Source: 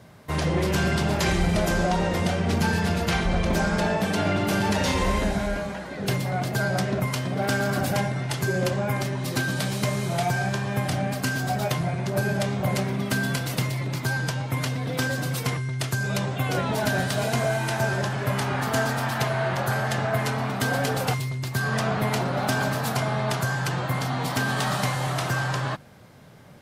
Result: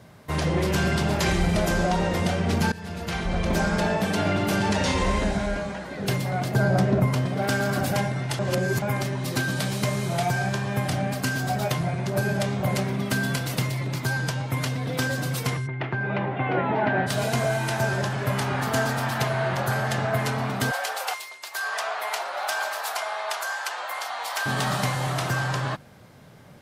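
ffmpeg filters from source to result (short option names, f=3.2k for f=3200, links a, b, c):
-filter_complex "[0:a]asettb=1/sr,asplit=3[a][b][c];[a]atrim=end=4.564[d];[b]atrim=start=4.56:end=5.84,asetpts=PTS-STARTPTS,afade=t=in:d=0.004:c=qsin,afade=t=out:st=1.276:d=0.004:c=qsin,lowpass=f=9.7k:w=0.5412,lowpass=f=9.7k:w=1.3066[e];[c]atrim=start=5.836[f];[d][e]acrossfade=d=0.004:c1=hsin:c2=qsin[g];[g][f]acrossfade=d=0.004:c1=qsin:c2=hsin,asettb=1/sr,asplit=3[h][i][j];[h]atrim=end=6.544[k];[i]atrim=start=6.54:end=7.26,asetpts=PTS-STARTPTS,afade=t=in:d=0.004:c=qsin,afade=t=out:st=0.716:d=0.004:c=qsin,tiltshelf=f=1.3k:g=5.5[l];[j]atrim=start=7.256[m];[k][l]acrossfade=d=0.004:c1=hsin:c2=qsin[n];[n][m]acrossfade=d=0.004:c1=qsin:c2=hsin,asplit=3[o][p][q];[o]afade=t=out:st=15.66:d=0.02[r];[p]highpass=130,equalizer=f=340:t=q:w=4:g=7,equalizer=f=830:t=q:w=4:g=7,equalizer=f=2k:t=q:w=4:g=4,lowpass=f=2.6k:w=0.5412,lowpass=f=2.6k:w=1.3066,afade=t=in:st=15.66:d=0.02,afade=t=out:st=17.06:d=0.02[s];[q]afade=t=in:st=17.06:d=0.02[t];[r][s][t]amix=inputs=3:normalize=0,asettb=1/sr,asplit=3[u][v][w];[u]atrim=end=20.714[x];[v]atrim=start=20.71:end=24.46,asetpts=PTS-STARTPTS,afade=t=in:d=0.004:c=qsin,afade=t=out:st=3.746:d=0.004:c=qsin,highpass=f=650:w=0.5412,highpass=f=650:w=1.3066[y];[w]atrim=start=24.456[z];[x][y]acrossfade=d=0.004:c1=hsin:c2=qsin[aa];[aa][z]acrossfade=d=0.004:c1=qsin:c2=hsin,asplit=4[ab][ac][ad][ae];[ab]atrim=end=2.72,asetpts=PTS-STARTPTS,afade=t=out:st=2.716:d=0.004:c=hsin:silence=0.125893[af];[ac]atrim=start=2.72:end=8.392,asetpts=PTS-STARTPTS,afade=t=in:d=0.85:silence=0.125893[ag];[ad]atrim=start=8.388:end=8.822,asetpts=PTS-STARTPTS,areverse[ah];[ae]atrim=start=8.818[ai];[af][ag]concat=n=2:v=0:a=1[aj];[aj][ah]acrossfade=d=0.004:c1=hsin:c2=hsin[ak];[ak][ai]acrossfade=d=0.004:c1=hsin:c2=hsin"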